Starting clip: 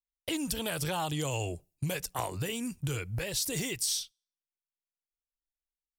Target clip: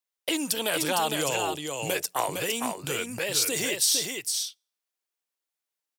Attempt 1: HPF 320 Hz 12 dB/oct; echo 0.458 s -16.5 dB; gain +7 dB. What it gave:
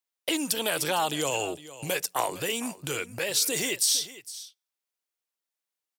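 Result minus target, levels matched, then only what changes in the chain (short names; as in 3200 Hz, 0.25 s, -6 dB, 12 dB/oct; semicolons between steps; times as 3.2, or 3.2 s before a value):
echo-to-direct -11.5 dB
change: echo 0.458 s -5 dB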